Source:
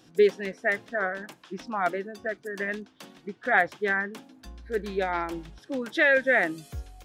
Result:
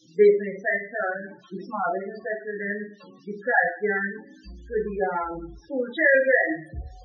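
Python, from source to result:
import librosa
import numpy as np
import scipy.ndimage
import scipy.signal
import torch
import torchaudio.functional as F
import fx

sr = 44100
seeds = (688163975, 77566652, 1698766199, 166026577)

y = fx.rev_double_slope(x, sr, seeds[0], early_s=0.44, late_s=1.9, knee_db=-27, drr_db=-2.0)
y = fx.dmg_noise_band(y, sr, seeds[1], low_hz=2600.0, high_hz=7200.0, level_db=-50.0)
y = fx.spec_topn(y, sr, count=16)
y = F.gain(torch.from_numpy(y), -1.5).numpy()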